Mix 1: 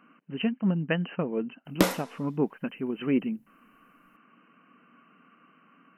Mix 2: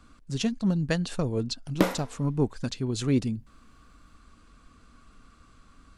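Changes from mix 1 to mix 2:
speech: remove brick-wall FIR band-pass 150–3100 Hz; master: add high shelf 3300 Hz -8.5 dB

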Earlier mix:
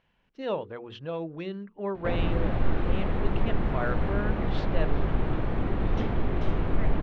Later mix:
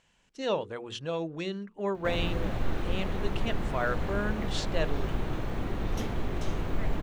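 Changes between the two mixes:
background -5.0 dB; master: remove air absorption 310 m

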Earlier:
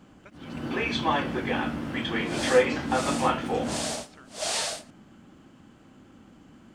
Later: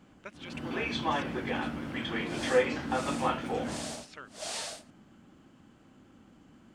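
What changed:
speech +6.5 dB; first sound -5.0 dB; second sound -8.5 dB

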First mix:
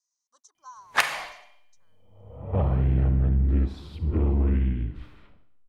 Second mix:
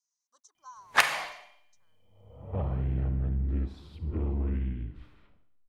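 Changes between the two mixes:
speech -3.0 dB; second sound -7.5 dB

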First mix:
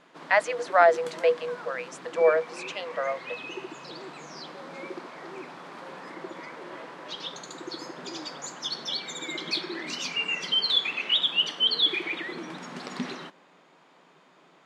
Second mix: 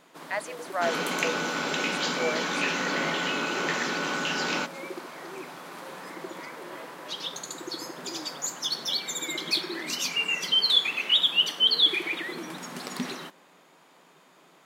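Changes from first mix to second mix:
speech -10.5 dB; second sound: unmuted; master: remove air absorption 95 m

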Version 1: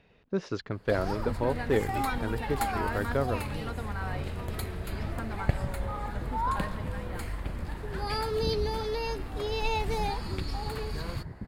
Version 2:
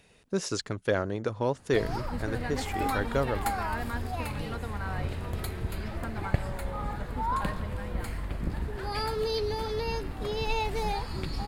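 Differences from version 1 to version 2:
speech: remove air absorption 270 m; first sound: entry +0.85 s

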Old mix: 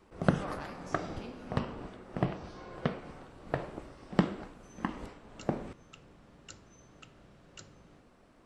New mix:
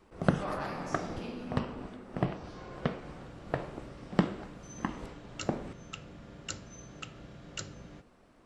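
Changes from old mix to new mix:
speech: send +8.0 dB; second sound +10.5 dB

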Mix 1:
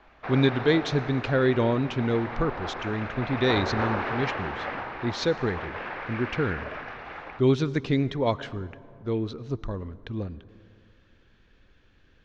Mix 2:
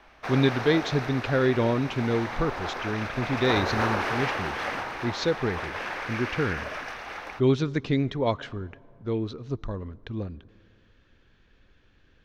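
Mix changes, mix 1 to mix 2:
speech: send -6.0 dB; background: remove air absorption 320 m

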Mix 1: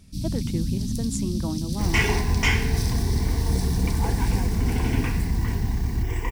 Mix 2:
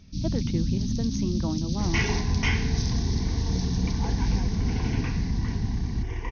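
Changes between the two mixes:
second sound -5.0 dB; master: add brick-wall FIR low-pass 6600 Hz

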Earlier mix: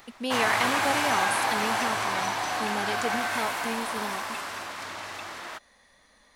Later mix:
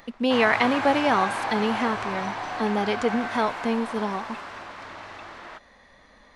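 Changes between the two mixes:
speech +9.5 dB; master: add tape spacing loss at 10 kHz 20 dB

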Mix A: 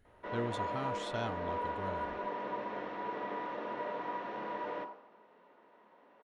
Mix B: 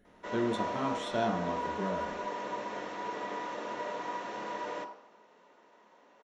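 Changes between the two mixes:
speech: send on; background: remove air absorption 310 m

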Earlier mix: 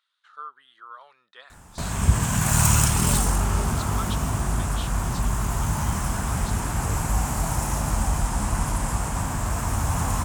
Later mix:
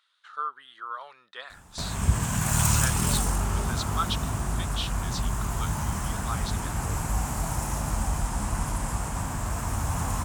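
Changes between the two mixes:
speech +6.5 dB; background -4.0 dB

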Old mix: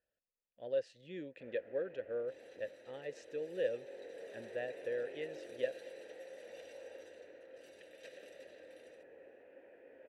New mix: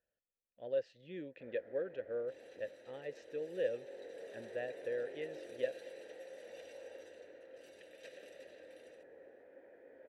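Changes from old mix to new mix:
speech: add air absorption 110 m; first sound: add bell 2700 Hz -13 dB 0.28 oct

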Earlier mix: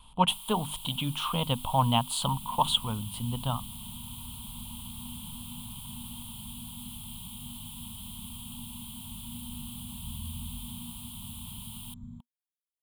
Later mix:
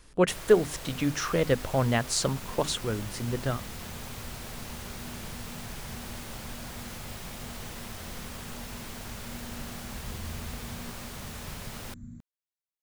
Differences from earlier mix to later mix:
first sound: remove pre-emphasis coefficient 0.97; master: remove EQ curve 240 Hz 0 dB, 350 Hz -18 dB, 610 Hz -7 dB, 940 Hz +13 dB, 1800 Hz -21 dB, 3200 Hz +13 dB, 5700 Hz -21 dB, 9600 Hz +4 dB, 14000 Hz -3 dB

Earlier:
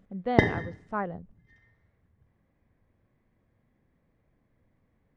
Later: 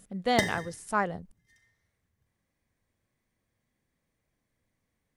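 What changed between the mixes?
background -11.5 dB; master: remove tape spacing loss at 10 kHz 44 dB

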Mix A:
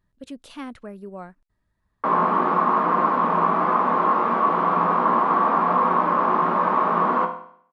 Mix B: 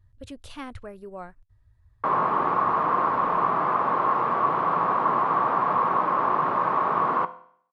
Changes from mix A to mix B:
background: send -10.0 dB; master: add resonant low shelf 140 Hz +12 dB, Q 3

